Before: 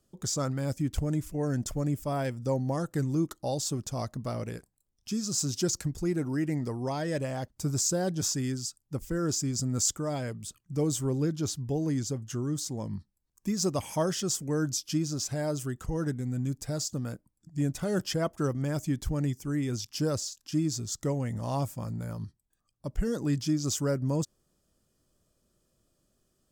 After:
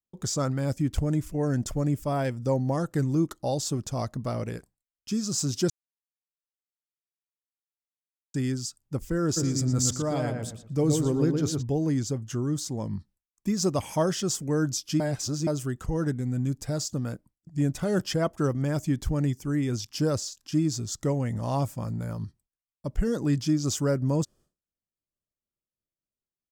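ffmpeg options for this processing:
ffmpeg -i in.wav -filter_complex "[0:a]asplit=3[link_01][link_02][link_03];[link_01]afade=type=out:start_time=9.36:duration=0.02[link_04];[link_02]asplit=2[link_05][link_06];[link_06]adelay=117,lowpass=frequency=2000:poles=1,volume=-3dB,asplit=2[link_07][link_08];[link_08]adelay=117,lowpass=frequency=2000:poles=1,volume=0.31,asplit=2[link_09][link_10];[link_10]adelay=117,lowpass=frequency=2000:poles=1,volume=0.31,asplit=2[link_11][link_12];[link_12]adelay=117,lowpass=frequency=2000:poles=1,volume=0.31[link_13];[link_05][link_07][link_09][link_11][link_13]amix=inputs=5:normalize=0,afade=type=in:start_time=9.36:duration=0.02,afade=type=out:start_time=11.61:duration=0.02[link_14];[link_03]afade=type=in:start_time=11.61:duration=0.02[link_15];[link_04][link_14][link_15]amix=inputs=3:normalize=0,asplit=5[link_16][link_17][link_18][link_19][link_20];[link_16]atrim=end=5.7,asetpts=PTS-STARTPTS,afade=type=out:start_time=5.696:duration=0.004:curve=hsin[link_21];[link_17]atrim=start=5.7:end=8.34,asetpts=PTS-STARTPTS,volume=0[link_22];[link_18]atrim=start=8.34:end=15.002,asetpts=PTS-STARTPTS,afade=type=in:duration=0.004:curve=hsin[link_23];[link_19]atrim=start=14.998:end=15.472,asetpts=PTS-STARTPTS,areverse[link_24];[link_20]atrim=start=15.468[link_25];[link_21][link_22][link_23]concat=n=3:v=0:a=1[link_26];[link_26][link_24]acrossfade=duration=0.004:curve1=hsin:curve2=hsin[link_27];[link_27][link_25]acrossfade=duration=0.004:curve1=hsin:curve2=hsin,highshelf=frequency=5400:gain=5.5,agate=range=-33dB:threshold=-53dB:ratio=3:detection=peak,aemphasis=mode=reproduction:type=cd,volume=3dB" out.wav

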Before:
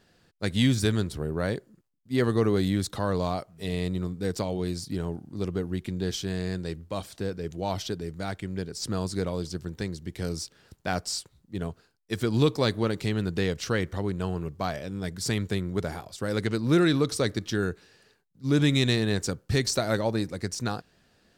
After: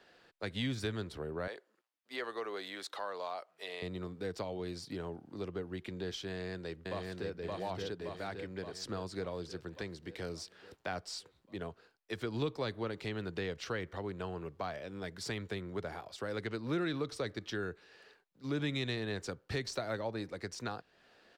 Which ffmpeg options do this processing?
ffmpeg -i in.wav -filter_complex "[0:a]asettb=1/sr,asplit=3[link_01][link_02][link_03];[link_01]atrim=end=1.474[link_04];[link_02]atrim=start=1.47:end=3.82,asetpts=PTS-STARTPTS,afade=type=in:duration=0.004:curve=qsin,afade=type=out:start_time=2.346:duration=0.004:curve=qsin,highpass=600[link_05];[link_03]atrim=start=3.816[link_06];[link_04][link_05]acrossfade=duration=0.004:curve1=hsin:curve2=qsin[link_07];[link_07][link_06]acrossfade=duration=0.004:curve1=qsin:curve2=hsin,asplit=2[link_08][link_09];[link_09]afade=type=in:start_time=6.28:duration=0.01,afade=type=out:start_time=7.33:duration=0.01,aecho=0:1:570|1140|1710|2280|2850|3420|3990|4560:0.891251|0.490188|0.269603|0.148282|0.081555|0.0448553|0.0246704|0.0135687[link_10];[link_08][link_10]amix=inputs=2:normalize=0,acrossover=split=330 4300:gain=0.141 1 0.224[link_11][link_12][link_13];[link_11][link_12][link_13]amix=inputs=3:normalize=0,acrossover=split=170[link_14][link_15];[link_15]acompressor=threshold=-49dB:ratio=2[link_16];[link_14][link_16]amix=inputs=2:normalize=0,volume=3.5dB" out.wav

